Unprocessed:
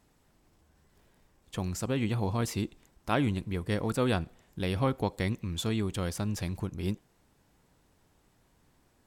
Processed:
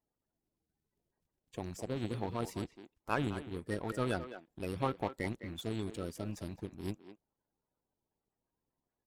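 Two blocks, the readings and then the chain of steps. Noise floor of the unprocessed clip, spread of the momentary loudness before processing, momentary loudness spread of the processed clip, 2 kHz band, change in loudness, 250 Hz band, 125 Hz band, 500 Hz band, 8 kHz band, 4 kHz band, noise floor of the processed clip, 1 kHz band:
-68 dBFS, 8 LU, 10 LU, -5.5 dB, -7.0 dB, -7.5 dB, -9.5 dB, -5.5 dB, -11.0 dB, -9.0 dB, under -85 dBFS, -4.0 dB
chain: coarse spectral quantiser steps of 30 dB; power-law waveshaper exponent 1.4; speakerphone echo 210 ms, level -10 dB; trim -2.5 dB

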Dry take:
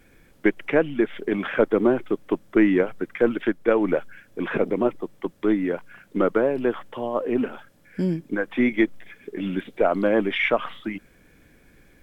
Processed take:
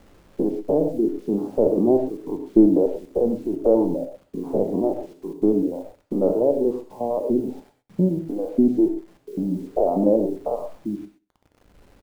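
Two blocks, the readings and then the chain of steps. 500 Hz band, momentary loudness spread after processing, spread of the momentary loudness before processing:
+1.5 dB, 13 LU, 13 LU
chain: spectrogram pixelated in time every 100 ms; steep low-pass 880 Hz 48 dB/octave; reverb removal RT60 1.7 s; word length cut 10-bit, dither none; feedback delay 64 ms, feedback 52%, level -23.5 dB; gated-style reverb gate 150 ms flat, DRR 6 dB; trim +5 dB

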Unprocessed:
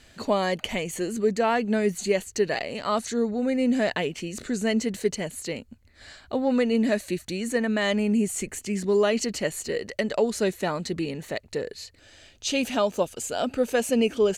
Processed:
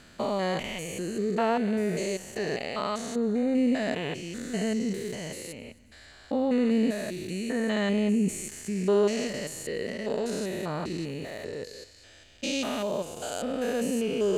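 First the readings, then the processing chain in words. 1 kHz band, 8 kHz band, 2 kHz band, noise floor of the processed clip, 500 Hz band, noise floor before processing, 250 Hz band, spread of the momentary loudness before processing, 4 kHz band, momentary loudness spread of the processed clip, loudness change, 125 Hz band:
-4.0 dB, -5.0 dB, -5.0 dB, -53 dBFS, -4.0 dB, -56 dBFS, -1.5 dB, 9 LU, -4.0 dB, 11 LU, -3.0 dB, -1.0 dB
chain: spectrogram pixelated in time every 200 ms; thinning echo 266 ms, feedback 57%, high-pass 510 Hz, level -23 dB

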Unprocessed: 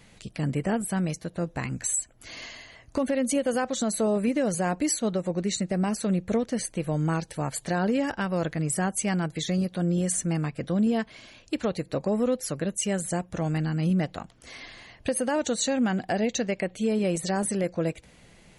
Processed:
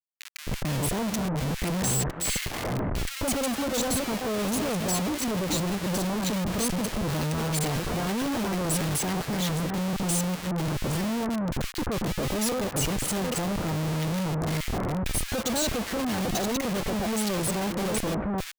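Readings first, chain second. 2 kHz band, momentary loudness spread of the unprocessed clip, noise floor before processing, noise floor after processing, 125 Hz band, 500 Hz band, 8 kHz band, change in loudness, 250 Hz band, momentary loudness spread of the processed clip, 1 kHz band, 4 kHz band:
+1.5 dB, 9 LU, -55 dBFS, -38 dBFS, +1.0 dB, -2.5 dB, +1.5 dB, -0.5 dB, -1.5 dB, 3 LU, +1.5 dB, +5.5 dB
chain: chunks repeated in reverse 422 ms, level -9 dB; Schmitt trigger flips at -39 dBFS; bands offset in time highs, lows 260 ms, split 1.6 kHz

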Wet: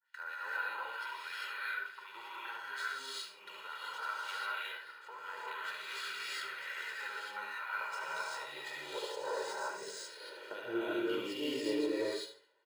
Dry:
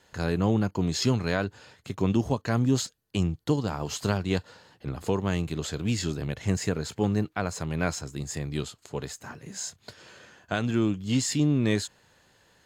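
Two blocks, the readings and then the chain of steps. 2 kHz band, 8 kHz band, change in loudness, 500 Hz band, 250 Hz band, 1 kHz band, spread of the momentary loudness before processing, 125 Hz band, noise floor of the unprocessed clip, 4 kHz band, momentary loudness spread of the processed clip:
-0.5 dB, -15.5 dB, -11.0 dB, -9.0 dB, -16.0 dB, -4.0 dB, 12 LU, under -35 dB, -63 dBFS, -6.0 dB, 10 LU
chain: expander -53 dBFS; bass shelf 420 Hz -10 dB; hum notches 50/100/150 Hz; comb 2.1 ms, depth 87%; gain riding within 4 dB; peak limiter -22.5 dBFS, peak gain reduction 10 dB; high-pass sweep 1.4 kHz -> 350 Hz, 7.05–10.24 s; harmonic tremolo 4.1 Hz, depth 100%, crossover 1.6 kHz; distance through air 160 m; on a send: tape echo 72 ms, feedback 33%, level -5.5 dB, low-pass 5.1 kHz; on the sum: gated-style reverb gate 420 ms rising, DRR -8 dB; decimation joined by straight lines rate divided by 3×; trim -5.5 dB

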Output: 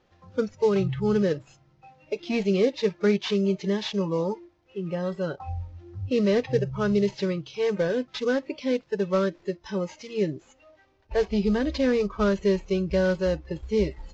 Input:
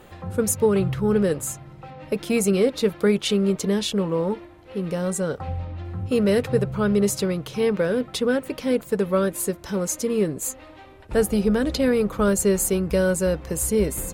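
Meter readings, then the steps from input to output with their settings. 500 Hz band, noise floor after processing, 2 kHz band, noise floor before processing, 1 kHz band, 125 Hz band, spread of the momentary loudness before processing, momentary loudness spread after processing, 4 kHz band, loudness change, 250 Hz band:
-3.0 dB, -62 dBFS, -3.0 dB, -45 dBFS, -3.0 dB, -3.5 dB, 10 LU, 10 LU, -4.0 dB, -3.5 dB, -3.5 dB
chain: CVSD coder 32 kbps; spectral noise reduction 16 dB; trim -2 dB

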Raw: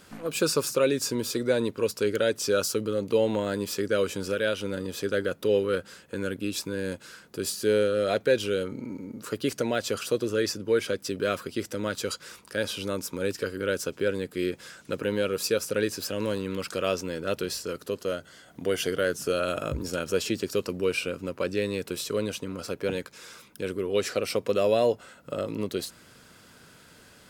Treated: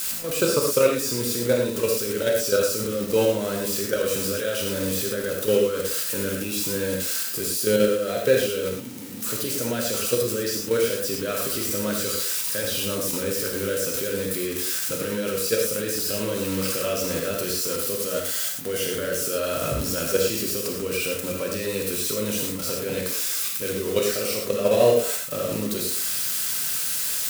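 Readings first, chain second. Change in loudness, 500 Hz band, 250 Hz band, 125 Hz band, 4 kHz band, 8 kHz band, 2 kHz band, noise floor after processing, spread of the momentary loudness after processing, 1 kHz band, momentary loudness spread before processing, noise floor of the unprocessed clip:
+5.0 dB, +3.0 dB, +2.0 dB, +3.5 dB, +5.5 dB, +10.5 dB, +2.0 dB, -30 dBFS, 5 LU, +2.0 dB, 10 LU, -54 dBFS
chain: zero-crossing glitches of -23.5 dBFS; on a send: repeats whose band climbs or falls 112 ms, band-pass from 400 Hz, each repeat 1.4 oct, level -11 dB; on the sum: level held to a coarse grid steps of 11 dB; gated-style reverb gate 140 ms flat, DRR -1 dB; trim +3.5 dB

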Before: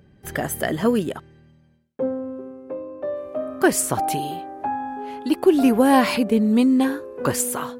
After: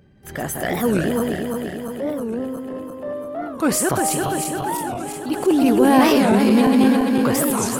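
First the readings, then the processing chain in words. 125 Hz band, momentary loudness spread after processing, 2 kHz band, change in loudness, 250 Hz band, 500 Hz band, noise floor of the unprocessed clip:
+5.0 dB, 15 LU, +2.0 dB, +2.5 dB, +3.0 dB, +2.0 dB, -55 dBFS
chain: backward echo that repeats 171 ms, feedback 79%, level -4 dB; transient shaper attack -5 dB, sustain +4 dB; warped record 45 rpm, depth 250 cents

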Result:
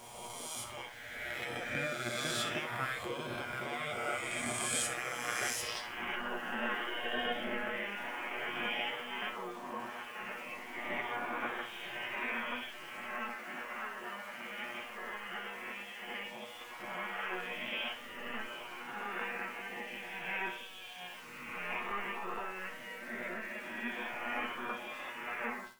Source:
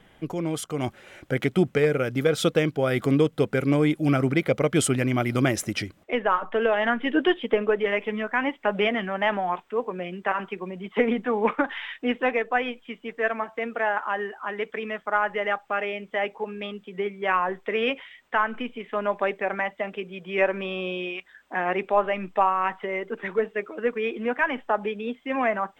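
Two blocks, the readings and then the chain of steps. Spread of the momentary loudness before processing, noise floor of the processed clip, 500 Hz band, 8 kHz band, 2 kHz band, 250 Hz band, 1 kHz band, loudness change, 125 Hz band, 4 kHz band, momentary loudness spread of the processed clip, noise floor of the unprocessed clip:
9 LU, -48 dBFS, -19.0 dB, -3.5 dB, -8.5 dB, -19.5 dB, -13.0 dB, -12.5 dB, -21.5 dB, -5.0 dB, 9 LU, -58 dBFS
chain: reverse spectral sustain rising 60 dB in 1.92 s; de-hum 81.71 Hz, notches 29; small samples zeroed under -38.5 dBFS; reverse; upward compressor, threshold -39 dBFS; reverse; spectral gate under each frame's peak -10 dB weak; feedback comb 120 Hz, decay 0.18 s, harmonics all, mix 90%; flutter echo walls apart 11.1 m, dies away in 0.34 s; trim -4 dB

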